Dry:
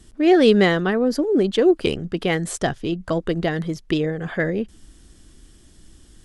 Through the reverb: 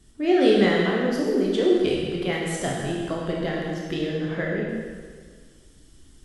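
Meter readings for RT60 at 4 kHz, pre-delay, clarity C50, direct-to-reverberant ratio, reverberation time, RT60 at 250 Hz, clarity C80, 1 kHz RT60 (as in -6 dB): 1.6 s, 6 ms, 0.0 dB, -3.5 dB, 1.7 s, 1.7 s, 2.0 dB, 1.7 s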